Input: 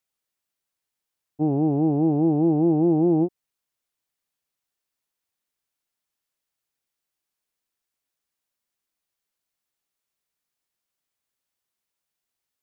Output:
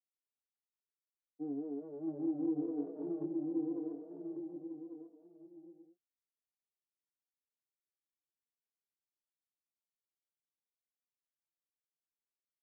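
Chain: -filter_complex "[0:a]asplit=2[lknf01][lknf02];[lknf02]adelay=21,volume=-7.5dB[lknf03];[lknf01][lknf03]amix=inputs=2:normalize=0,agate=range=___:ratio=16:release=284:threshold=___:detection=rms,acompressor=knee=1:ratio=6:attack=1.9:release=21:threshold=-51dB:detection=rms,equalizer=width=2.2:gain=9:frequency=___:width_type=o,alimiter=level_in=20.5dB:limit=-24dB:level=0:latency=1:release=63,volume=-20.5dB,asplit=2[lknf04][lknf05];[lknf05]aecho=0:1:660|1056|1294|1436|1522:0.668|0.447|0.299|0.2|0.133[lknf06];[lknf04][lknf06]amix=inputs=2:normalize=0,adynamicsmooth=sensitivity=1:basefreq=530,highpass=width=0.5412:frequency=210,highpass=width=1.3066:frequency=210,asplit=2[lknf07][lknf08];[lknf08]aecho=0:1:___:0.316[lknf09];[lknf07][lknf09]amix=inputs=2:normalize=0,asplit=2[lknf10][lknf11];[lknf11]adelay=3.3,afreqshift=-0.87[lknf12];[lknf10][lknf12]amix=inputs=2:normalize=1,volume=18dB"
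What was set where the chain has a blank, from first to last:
-38dB, -13dB, 390, 1144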